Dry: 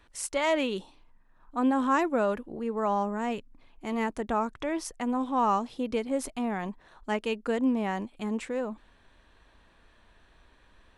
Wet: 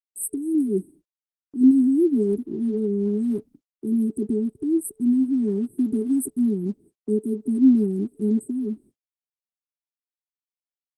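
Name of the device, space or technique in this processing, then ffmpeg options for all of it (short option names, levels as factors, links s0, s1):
video call: -filter_complex "[0:a]asettb=1/sr,asplit=3[s0][s1][s2];[s0]atrim=end=0.544[s3];[s1]atrim=start=0.54:end=1.61,asetpts=PTS-STARTPTS,afade=t=in:d=0.004:c=qsin,afade=t=out:st=1.066:d=0.004:c=qsin,aecho=1:1:5.9:0.37,atrim=end_sample=47187[s4];[s2]atrim=start=1.606[s5];[s3][s4]acrossfade=d=0.004:c1=hsin:c2=qsin[s6];[s6][s5]acrossfade=d=0.004:c1=qsin:c2=hsin,afftfilt=real='re*(1-between(b*sr/4096,440,8100))':imag='im*(1-between(b*sr/4096,440,8100))':win_size=4096:overlap=0.75,highpass=160,dynaudnorm=f=100:g=5:m=3.76,agate=range=0.00282:threshold=0.00447:ratio=16:detection=peak" -ar 48000 -c:a libopus -b:a 16k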